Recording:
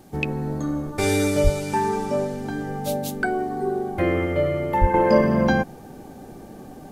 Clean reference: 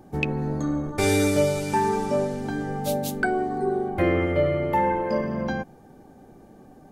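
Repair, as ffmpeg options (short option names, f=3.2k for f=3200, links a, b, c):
-filter_complex "[0:a]asplit=3[a][b][c];[a]afade=t=out:st=1.43:d=0.02[d];[b]highpass=f=140:w=0.5412,highpass=f=140:w=1.3066,afade=t=in:st=1.43:d=0.02,afade=t=out:st=1.55:d=0.02[e];[c]afade=t=in:st=1.55:d=0.02[f];[d][e][f]amix=inputs=3:normalize=0,asplit=3[g][h][i];[g]afade=t=out:st=4.8:d=0.02[j];[h]highpass=f=140:w=0.5412,highpass=f=140:w=1.3066,afade=t=in:st=4.8:d=0.02,afade=t=out:st=4.92:d=0.02[k];[i]afade=t=in:st=4.92:d=0.02[l];[j][k][l]amix=inputs=3:normalize=0,agate=range=-21dB:threshold=-33dB,asetnsamples=n=441:p=0,asendcmd='4.94 volume volume -8.5dB',volume=0dB"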